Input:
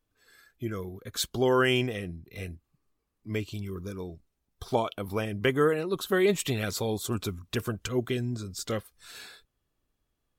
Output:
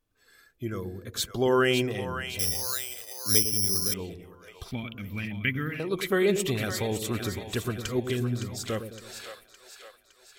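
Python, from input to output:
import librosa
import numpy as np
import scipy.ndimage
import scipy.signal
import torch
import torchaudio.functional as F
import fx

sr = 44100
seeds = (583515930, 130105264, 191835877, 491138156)

p1 = fx.curve_eq(x, sr, hz=(250.0, 410.0, 1000.0, 2200.0, 8000.0, 14000.0), db=(0, -19, -19, 7, -28, 1), at=(4.71, 5.8))
p2 = p1 + fx.echo_split(p1, sr, split_hz=550.0, low_ms=106, high_ms=563, feedback_pct=52, wet_db=-8, dry=0)
y = fx.resample_bad(p2, sr, factor=8, down='filtered', up='zero_stuff', at=(2.39, 3.94))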